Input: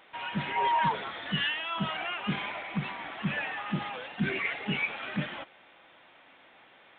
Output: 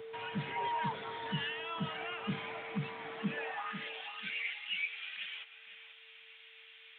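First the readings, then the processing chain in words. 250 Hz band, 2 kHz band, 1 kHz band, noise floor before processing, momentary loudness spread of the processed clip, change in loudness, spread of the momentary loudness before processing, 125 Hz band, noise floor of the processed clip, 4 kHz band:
-7.5 dB, -6.5 dB, -8.0 dB, -58 dBFS, 17 LU, -7.0 dB, 8 LU, -7.0 dB, -57 dBFS, -5.5 dB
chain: whine 450 Hz -41 dBFS; high-pass sweep 110 Hz -> 2800 Hz, 3.1–3.89; on a send: tape echo 0.493 s, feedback 30%, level -10.5 dB, low-pass 1500 Hz; on the sum: three-band squash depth 40%; gain -8 dB

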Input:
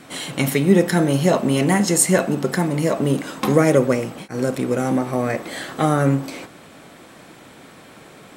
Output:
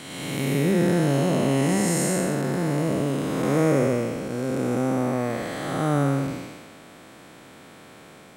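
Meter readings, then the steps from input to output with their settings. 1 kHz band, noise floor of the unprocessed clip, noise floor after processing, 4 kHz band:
-5.0 dB, -45 dBFS, -47 dBFS, -5.0 dB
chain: time blur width 0.372 s; gain -1 dB

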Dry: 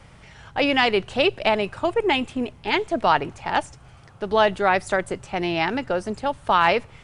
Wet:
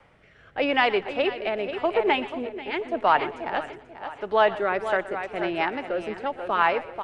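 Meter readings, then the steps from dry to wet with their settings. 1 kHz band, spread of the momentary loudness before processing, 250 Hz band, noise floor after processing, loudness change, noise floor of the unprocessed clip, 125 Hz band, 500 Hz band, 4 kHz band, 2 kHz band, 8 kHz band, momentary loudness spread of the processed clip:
-2.5 dB, 8 LU, -5.0 dB, -56 dBFS, -3.0 dB, -49 dBFS, -10.5 dB, -2.0 dB, -6.5 dB, -3.0 dB, under -15 dB, 10 LU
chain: on a send: feedback echo 0.487 s, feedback 39%, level -9.5 dB; on the sum: rotary speaker horn 0.85 Hz, later 5 Hz, at 4.42; three-band isolator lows -12 dB, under 300 Hz, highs -15 dB, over 2900 Hz; warbling echo 0.122 s, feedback 34%, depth 92 cents, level -17 dB

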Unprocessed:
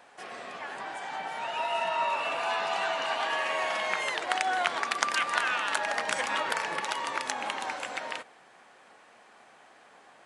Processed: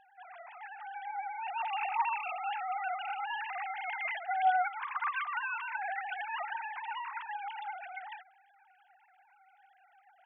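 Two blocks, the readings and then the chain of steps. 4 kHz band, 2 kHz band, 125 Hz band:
-15.0 dB, -7.0 dB, n/a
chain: sine-wave speech; gain -5 dB

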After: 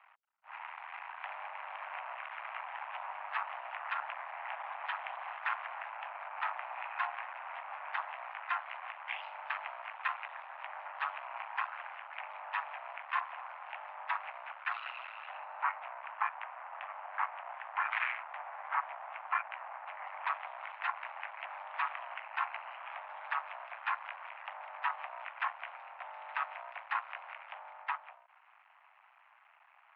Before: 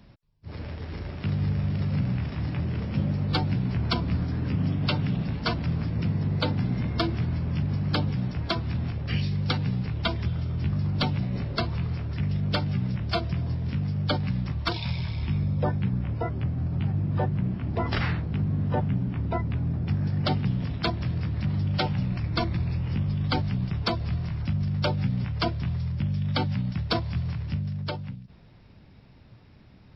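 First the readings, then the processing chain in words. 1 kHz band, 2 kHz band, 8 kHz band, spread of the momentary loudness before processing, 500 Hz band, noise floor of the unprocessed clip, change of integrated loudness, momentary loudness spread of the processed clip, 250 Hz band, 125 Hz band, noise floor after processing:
0.0 dB, 0.0 dB, n/a, 4 LU, -16.5 dB, -52 dBFS, -12.0 dB, 9 LU, under -40 dB, under -40 dB, -64 dBFS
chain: limiter -19.5 dBFS, peak gain reduction 6 dB; half-wave rectifier; mistuned SSB +380 Hz 490–2200 Hz; gain +5 dB

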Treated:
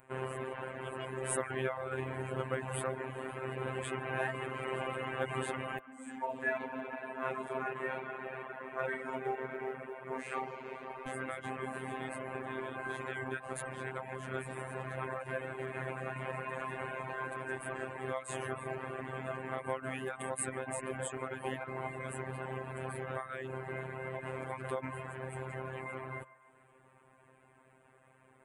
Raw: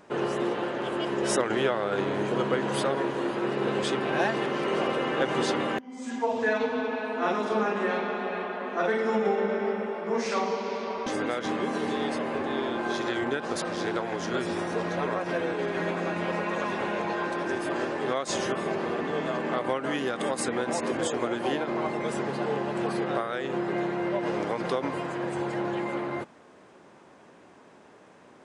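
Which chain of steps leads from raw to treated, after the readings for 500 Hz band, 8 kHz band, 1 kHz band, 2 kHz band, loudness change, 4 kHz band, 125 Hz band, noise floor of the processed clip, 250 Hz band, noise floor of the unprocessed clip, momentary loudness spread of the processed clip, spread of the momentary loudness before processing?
-11.5 dB, -6.0 dB, -10.0 dB, -7.5 dB, -10.5 dB, -15.5 dB, -4.5 dB, -64 dBFS, -15.0 dB, -53 dBFS, 6 LU, 4 LU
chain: robotiser 131 Hz; EQ curve 110 Hz 0 dB, 240 Hz -11 dB, 2400 Hz -4 dB, 5500 Hz -29 dB, 8400 Hz 0 dB; reverb removal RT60 0.61 s; short-mantissa float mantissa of 6-bit; on a send: narrowing echo 0.147 s, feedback 74%, band-pass 1100 Hz, level -17 dB; on the sum: gain +1 dB

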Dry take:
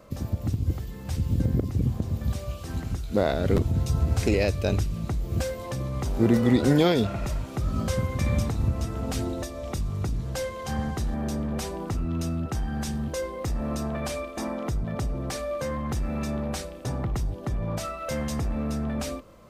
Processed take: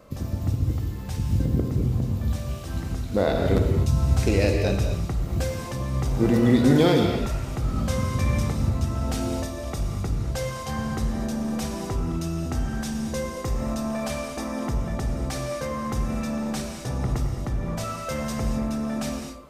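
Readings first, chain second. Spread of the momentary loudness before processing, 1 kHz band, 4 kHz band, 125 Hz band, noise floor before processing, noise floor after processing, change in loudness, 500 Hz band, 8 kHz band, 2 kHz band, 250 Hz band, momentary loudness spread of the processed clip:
9 LU, +2.5 dB, +2.0 dB, +2.0 dB, -39 dBFS, -34 dBFS, +2.0 dB, +1.5 dB, +2.0 dB, +2.0 dB, +2.5 dB, 9 LU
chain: non-linear reverb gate 0.28 s flat, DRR 2 dB

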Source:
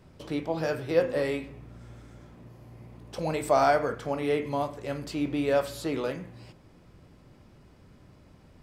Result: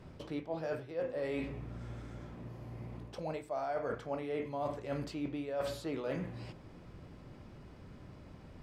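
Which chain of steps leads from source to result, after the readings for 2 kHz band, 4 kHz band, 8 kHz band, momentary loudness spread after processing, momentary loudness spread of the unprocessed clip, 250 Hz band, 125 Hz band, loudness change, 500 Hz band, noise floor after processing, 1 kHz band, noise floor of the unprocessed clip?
-11.5 dB, -10.0 dB, -13.0 dB, 16 LU, 18 LU, -8.0 dB, -5.5 dB, -11.0 dB, -10.0 dB, -54 dBFS, -12.5 dB, -56 dBFS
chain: dynamic EQ 640 Hz, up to +5 dB, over -35 dBFS, Q 2; reverse; compressor 16:1, threshold -36 dBFS, peak gain reduction 23 dB; reverse; high shelf 6500 Hz -10 dB; gain +2.5 dB

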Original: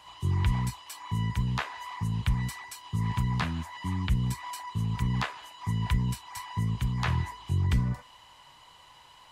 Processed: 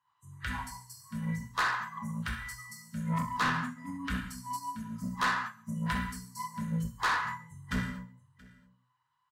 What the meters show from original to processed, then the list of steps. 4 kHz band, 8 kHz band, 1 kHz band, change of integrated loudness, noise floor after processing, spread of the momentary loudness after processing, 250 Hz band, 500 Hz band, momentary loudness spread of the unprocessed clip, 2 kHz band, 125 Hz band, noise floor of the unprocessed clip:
-2.0 dB, -1.0 dB, +3.0 dB, -3.5 dB, -76 dBFS, 12 LU, -2.0 dB, -2.5 dB, 8 LU, +5.5 dB, -11.0 dB, -55 dBFS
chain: HPF 84 Hz 12 dB/oct; band shelf 1300 Hz +12.5 dB 1.2 oct; de-hum 123.8 Hz, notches 27; spectral noise reduction 28 dB; ten-band EQ 125 Hz +11 dB, 250 Hz +4 dB, 500 Hz -7 dB; non-linear reverb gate 0.27 s falling, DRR -1.5 dB; soft clip -24 dBFS, distortion -8 dB; tapped delay 0.136/0.678 s -19/-17 dB; upward expander 1.5:1, over -42 dBFS

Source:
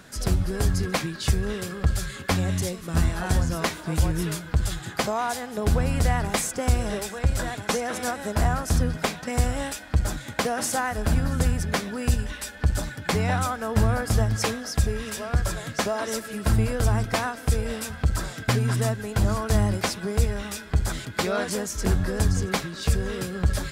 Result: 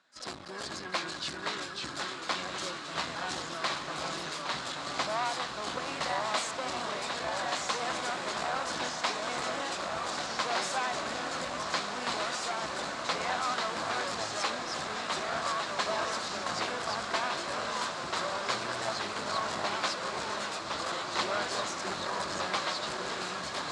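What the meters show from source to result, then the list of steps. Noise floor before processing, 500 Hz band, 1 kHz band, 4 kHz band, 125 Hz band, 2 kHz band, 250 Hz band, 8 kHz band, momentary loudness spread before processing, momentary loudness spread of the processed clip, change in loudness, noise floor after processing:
-40 dBFS, -7.0 dB, -1.0 dB, +0.5 dB, -25.5 dB, -2.5 dB, -14.0 dB, -7.5 dB, 5 LU, 4 LU, -7.0 dB, -40 dBFS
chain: gate -33 dBFS, range -16 dB; one-sided clip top -29 dBFS, bottom -15.5 dBFS; echoes that change speed 0.404 s, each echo -2 st, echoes 3; speaker cabinet 420–7100 Hz, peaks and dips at 440 Hz -8 dB, 1100 Hz +5 dB, 4000 Hz +5 dB, 6000 Hz -4 dB; diffused feedback echo 1.636 s, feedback 76%, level -8 dB; gain -3.5 dB

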